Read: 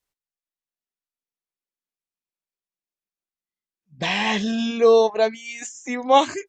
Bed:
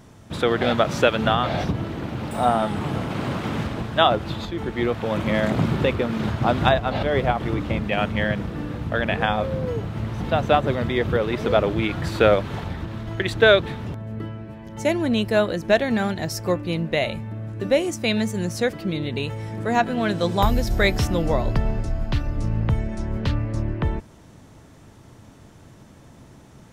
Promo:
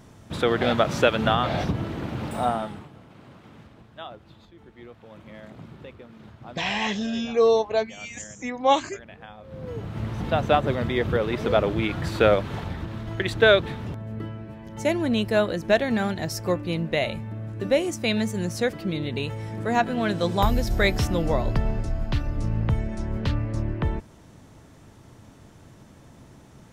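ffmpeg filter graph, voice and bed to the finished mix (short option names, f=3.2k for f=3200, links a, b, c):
-filter_complex "[0:a]adelay=2550,volume=-4dB[a];[1:a]volume=18.5dB,afade=t=out:st=2.26:d=0.63:silence=0.0944061,afade=t=in:st=9.43:d=0.62:silence=0.1[b];[a][b]amix=inputs=2:normalize=0"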